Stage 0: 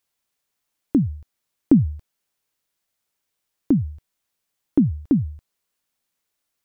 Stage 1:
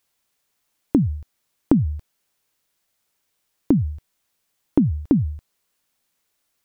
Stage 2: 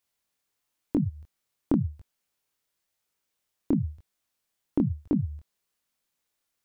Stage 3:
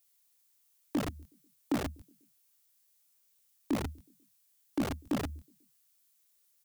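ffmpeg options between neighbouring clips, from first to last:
-af "acompressor=threshold=-19dB:ratio=6,volume=5.5dB"
-af "flanger=delay=20:depth=7.8:speed=0.98,volume=-4.5dB"
-filter_complex "[0:a]acrossover=split=220|500[a][b][c];[a]aeval=exprs='(mod(18.8*val(0)+1,2)-1)/18.8':c=same[d];[b]aecho=1:1:123|246|369|492:0.0841|0.0454|0.0245|0.0132[e];[c]crystalizer=i=4:c=0[f];[d][e][f]amix=inputs=3:normalize=0,volume=-5dB"

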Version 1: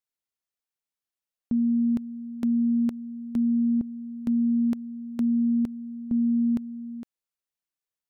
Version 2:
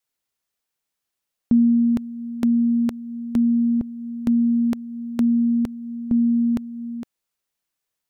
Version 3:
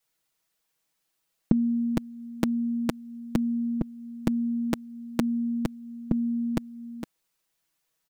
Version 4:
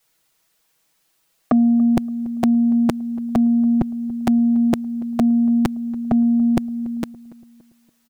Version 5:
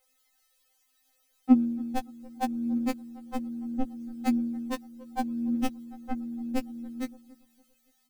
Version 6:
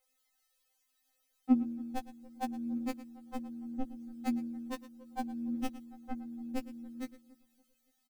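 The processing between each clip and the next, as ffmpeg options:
-af "adynamicequalizer=threshold=0.0126:dfrequency=220:dqfactor=1.4:tfrequency=220:tqfactor=1.4:attack=5:release=100:ratio=0.375:range=4:mode=cutabove:tftype=bell,volume=9dB"
-af "aecho=1:1:6.2:0.95,volume=2dB"
-filter_complex "[0:a]aeval=exprs='0.398*sin(PI/2*3.16*val(0)/0.398)':c=same,asplit=2[a][b];[b]adelay=285,lowpass=f=1.1k:p=1,volume=-20.5dB,asplit=2[c][d];[d]adelay=285,lowpass=f=1.1k:p=1,volume=0.48,asplit=2[e][f];[f]adelay=285,lowpass=f=1.1k:p=1,volume=0.48,asplit=2[g][h];[h]adelay=285,lowpass=f=1.1k:p=1,volume=0.48[i];[a][c][e][g][i]amix=inputs=5:normalize=0,volume=-2.5dB"
-af "aphaser=in_gain=1:out_gain=1:delay=4.7:decay=0.47:speed=0.36:type=triangular,afftfilt=real='re*3.46*eq(mod(b,12),0)':imag='im*3.46*eq(mod(b,12),0)':win_size=2048:overlap=0.75,volume=-3dB"
-af "aecho=1:1:112:0.15,volume=-7dB"

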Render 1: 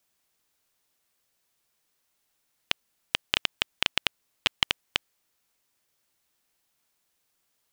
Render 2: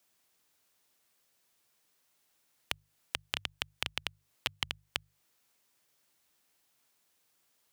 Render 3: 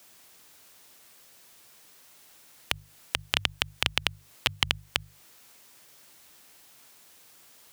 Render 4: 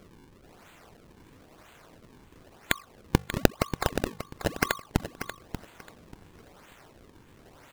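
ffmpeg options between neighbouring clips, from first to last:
-filter_complex "[0:a]highpass=65,bandreject=f=50:t=h:w=6,bandreject=f=100:t=h:w=6,bandreject=f=150:t=h:w=6,acrossover=split=130[a][b];[b]acompressor=threshold=-34dB:ratio=4[c];[a][c]amix=inputs=2:normalize=0,volume=1.5dB"
-af "alimiter=level_in=19dB:limit=-1dB:release=50:level=0:latency=1,volume=-1dB"
-af "afftfilt=real='real(if(lt(b,960),b+48*(1-2*mod(floor(b/48),2)),b),0)':imag='imag(if(lt(b,960),b+48*(1-2*mod(floor(b/48),2)),b),0)':win_size=2048:overlap=0.75,acrusher=samples=39:mix=1:aa=0.000001:lfo=1:lforange=62.4:lforate=1,aecho=1:1:587|1174|1761:0.299|0.0687|0.0158,volume=1.5dB"

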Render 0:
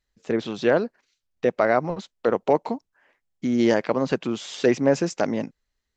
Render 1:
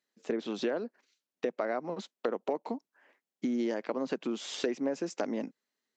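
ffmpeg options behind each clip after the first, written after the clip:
-af "highpass=f=230:w=0.5412,highpass=f=230:w=1.3066,lowshelf=f=330:g=7,acompressor=threshold=-26dB:ratio=6,volume=-3dB"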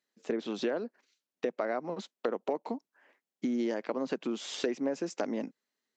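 -af anull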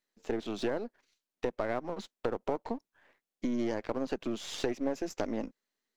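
-af "aeval=exprs='if(lt(val(0),0),0.447*val(0),val(0))':c=same,volume=1.5dB"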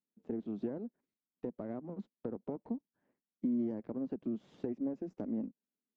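-af "bandpass=f=200:t=q:w=1.9:csg=0,volume=2.5dB"

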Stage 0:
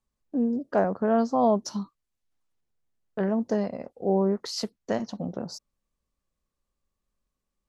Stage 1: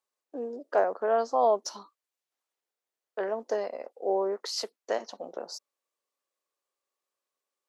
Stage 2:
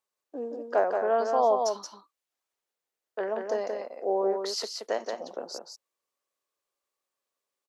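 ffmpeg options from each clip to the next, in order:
-af "highpass=f=400:w=0.5412,highpass=f=400:w=1.3066"
-af "aecho=1:1:176:0.562"

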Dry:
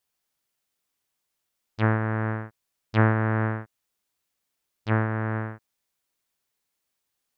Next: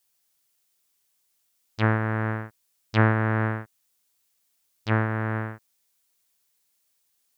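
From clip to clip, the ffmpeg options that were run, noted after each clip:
-af "highshelf=f=3.5k:g=10.5"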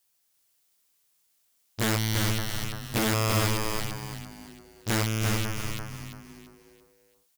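-filter_complex "[0:a]aeval=exprs='(mod(10.6*val(0)+1,2)-1)/10.6':c=same,asplit=6[a][b][c][d][e][f];[b]adelay=339,afreqshift=-120,volume=-3.5dB[g];[c]adelay=678,afreqshift=-240,volume=-11.9dB[h];[d]adelay=1017,afreqshift=-360,volume=-20.3dB[i];[e]adelay=1356,afreqshift=-480,volume=-28.7dB[j];[f]adelay=1695,afreqshift=-600,volume=-37.1dB[k];[a][g][h][i][j][k]amix=inputs=6:normalize=0"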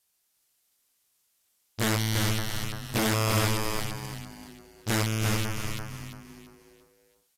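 -ar 32000 -c:a aac -b:a 64k

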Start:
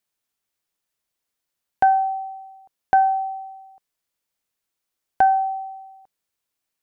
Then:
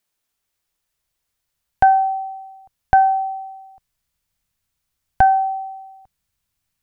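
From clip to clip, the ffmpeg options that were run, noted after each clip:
-af "asubboost=boost=10:cutoff=120,volume=4.5dB"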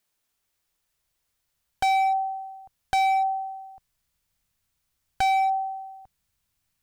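-af "volume=20dB,asoftclip=hard,volume=-20dB"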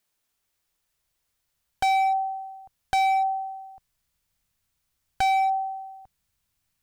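-af anull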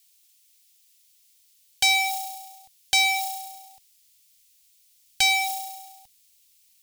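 -af "acrusher=bits=6:mode=log:mix=0:aa=0.000001,aexciter=amount=10.3:drive=6.2:freq=2.1k,volume=-8dB"

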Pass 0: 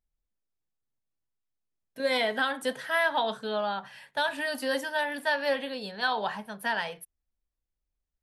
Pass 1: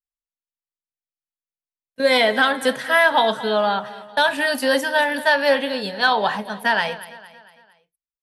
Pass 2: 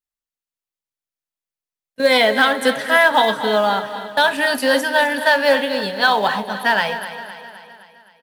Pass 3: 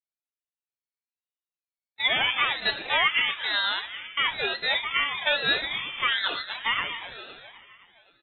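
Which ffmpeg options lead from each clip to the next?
-af "agate=range=-33dB:threshold=-37dB:ratio=3:detection=peak,aecho=1:1:228|456|684|912:0.141|0.0692|0.0339|0.0166,acontrast=78,volume=3.5dB"
-filter_complex "[0:a]asplit=2[a][b];[b]acrusher=bits=3:mode=log:mix=0:aa=0.000001,volume=-11dB[c];[a][c]amix=inputs=2:normalize=0,aecho=1:1:259|518|777|1036|1295|1554:0.224|0.125|0.0702|0.0393|0.022|0.0123"
-af "lowpass=f=2.8k:t=q:w=0.5098,lowpass=f=2.8k:t=q:w=0.6013,lowpass=f=2.8k:t=q:w=0.9,lowpass=f=2.8k:t=q:w=2.563,afreqshift=-3300,aeval=exprs='val(0)*sin(2*PI*730*n/s+730*0.5/1.1*sin(2*PI*1.1*n/s))':c=same,volume=-6.5dB"

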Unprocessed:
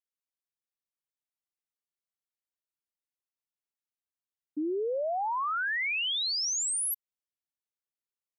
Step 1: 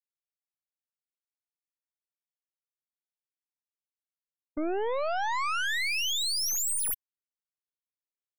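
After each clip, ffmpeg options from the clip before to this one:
-af "afftfilt=real='re*gte(hypot(re,im),0.00316)':imag='im*gte(hypot(re,im),0.00316)':win_size=1024:overlap=0.75,aeval=exprs='0.0447*(cos(1*acos(clip(val(0)/0.0447,-1,1)))-cos(1*PI/2))+0.0224*(cos(2*acos(clip(val(0)/0.0447,-1,1)))-cos(2*PI/2))+0.00708*(cos(4*acos(clip(val(0)/0.0447,-1,1)))-cos(4*PI/2))+0.00355*(cos(7*acos(clip(val(0)/0.0447,-1,1)))-cos(7*PI/2))':c=same"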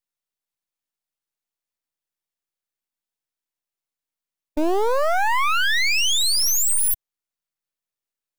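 -filter_complex "[0:a]aeval=exprs='max(val(0),0)':c=same,asplit=2[a][b];[b]acrusher=bits=4:mix=0:aa=0.000001,volume=-11dB[c];[a][c]amix=inputs=2:normalize=0,volume=8.5dB"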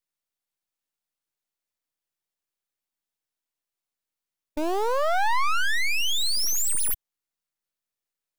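-filter_complex "[0:a]acrossover=split=770[a][b];[a]alimiter=limit=-20dB:level=0:latency=1[c];[b]asoftclip=type=tanh:threshold=-24dB[d];[c][d]amix=inputs=2:normalize=0"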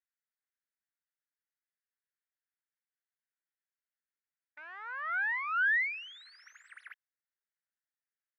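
-af "asuperpass=centerf=1700:order=4:qfactor=2.6"

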